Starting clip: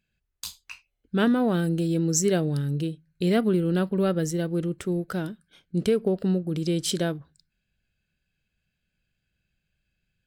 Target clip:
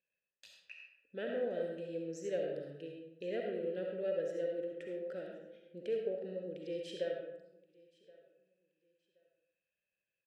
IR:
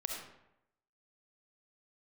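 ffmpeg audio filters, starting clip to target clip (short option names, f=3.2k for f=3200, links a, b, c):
-filter_complex "[0:a]asplit=2[a][b];[b]acompressor=threshold=-31dB:ratio=6,volume=-1dB[c];[a][c]amix=inputs=2:normalize=0,asplit=3[d][e][f];[d]bandpass=f=530:t=q:w=8,volume=0dB[g];[e]bandpass=f=1.84k:t=q:w=8,volume=-6dB[h];[f]bandpass=f=2.48k:t=q:w=8,volume=-9dB[i];[g][h][i]amix=inputs=3:normalize=0,aecho=1:1:1074|2148:0.0631|0.0151[j];[1:a]atrim=start_sample=2205[k];[j][k]afir=irnorm=-1:irlink=0,volume=-5dB"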